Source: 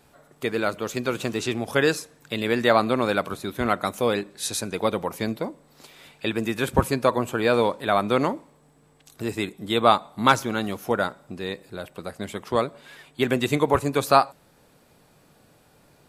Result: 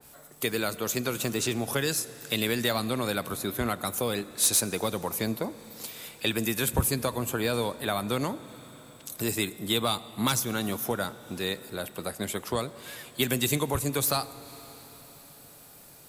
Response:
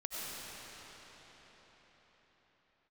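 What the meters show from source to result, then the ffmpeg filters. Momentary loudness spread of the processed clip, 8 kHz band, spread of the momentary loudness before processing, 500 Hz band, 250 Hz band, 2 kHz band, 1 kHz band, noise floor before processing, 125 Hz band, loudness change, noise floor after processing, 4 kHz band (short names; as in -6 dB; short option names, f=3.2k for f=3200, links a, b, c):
18 LU, +7.0 dB, 13 LU, -7.5 dB, -4.5 dB, -5.5 dB, -10.0 dB, -58 dBFS, -1.5 dB, -4.5 dB, -51 dBFS, +0.5 dB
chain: -filter_complex "[0:a]aemphasis=mode=production:type=75fm,acrossover=split=180|3000[a][b][c];[b]acompressor=threshold=-27dB:ratio=6[d];[a][d][c]amix=inputs=3:normalize=0,asoftclip=type=tanh:threshold=-12.5dB,asplit=2[e][f];[1:a]atrim=start_sample=2205,asetrate=48510,aresample=44100[g];[f][g]afir=irnorm=-1:irlink=0,volume=-17.5dB[h];[e][h]amix=inputs=2:normalize=0,adynamicequalizer=threshold=0.00631:dfrequency=2100:dqfactor=0.7:tfrequency=2100:tqfactor=0.7:attack=5:release=100:ratio=0.375:range=3:mode=cutabove:tftype=highshelf"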